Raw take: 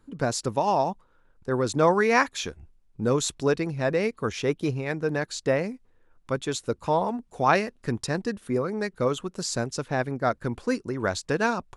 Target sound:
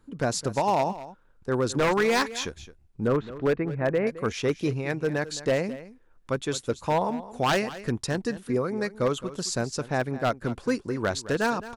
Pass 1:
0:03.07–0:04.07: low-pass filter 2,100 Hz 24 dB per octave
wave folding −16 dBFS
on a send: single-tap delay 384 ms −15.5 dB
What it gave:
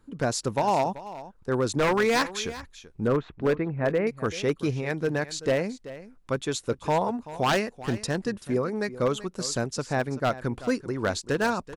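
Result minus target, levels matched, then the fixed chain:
echo 169 ms late
0:03.07–0:04.07: low-pass filter 2,100 Hz 24 dB per octave
wave folding −16 dBFS
on a send: single-tap delay 215 ms −15.5 dB

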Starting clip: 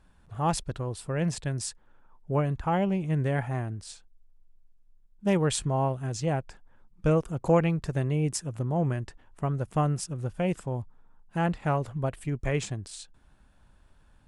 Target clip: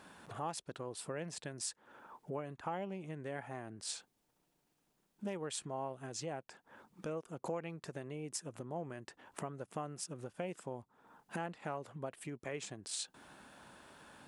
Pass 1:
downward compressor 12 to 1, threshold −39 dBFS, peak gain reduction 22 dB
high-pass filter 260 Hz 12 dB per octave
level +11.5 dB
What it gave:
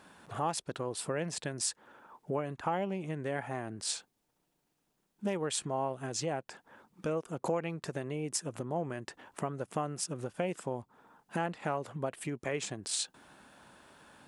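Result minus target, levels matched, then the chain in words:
downward compressor: peak gain reduction −7.5 dB
downward compressor 12 to 1, threshold −47 dBFS, peak gain reduction 29.5 dB
high-pass filter 260 Hz 12 dB per octave
level +11.5 dB

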